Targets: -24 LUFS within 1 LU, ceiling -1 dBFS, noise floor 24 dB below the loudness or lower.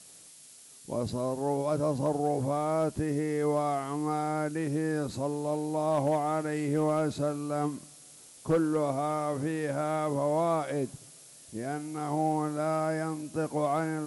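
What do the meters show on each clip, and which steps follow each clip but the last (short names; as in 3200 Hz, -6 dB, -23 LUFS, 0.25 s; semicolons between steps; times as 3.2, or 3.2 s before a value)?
clipped 0.2%; flat tops at -19.5 dBFS; noise floor -53 dBFS; noise floor target -55 dBFS; loudness -30.5 LUFS; peak -19.5 dBFS; loudness target -24.0 LUFS
-> clip repair -19.5 dBFS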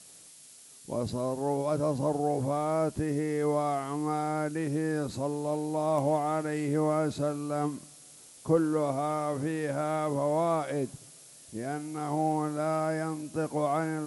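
clipped 0.0%; noise floor -53 dBFS; noise floor target -54 dBFS
-> denoiser 6 dB, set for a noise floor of -53 dBFS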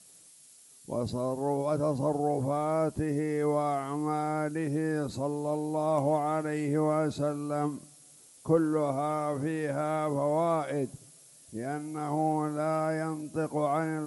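noise floor -56 dBFS; loudness -30.5 LUFS; peak -13.5 dBFS; loudness target -24.0 LUFS
-> gain +6.5 dB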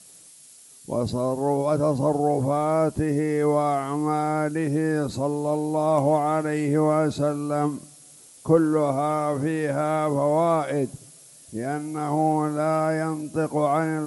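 loudness -24.0 LUFS; peak -7.0 dBFS; noise floor -49 dBFS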